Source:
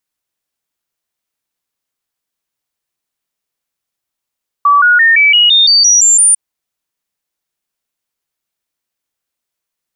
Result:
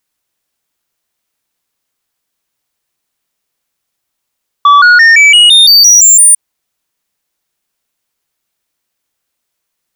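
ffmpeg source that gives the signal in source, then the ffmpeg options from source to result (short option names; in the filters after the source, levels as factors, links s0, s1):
-f lavfi -i "aevalsrc='0.596*clip(min(mod(t,0.17),0.17-mod(t,0.17))/0.005,0,1)*sin(2*PI*1150*pow(2,floor(t/0.17)/3)*mod(t,0.17))':d=1.7:s=44100"
-af "aeval=exprs='0.794*sin(PI/2*1.58*val(0)/0.794)':c=same"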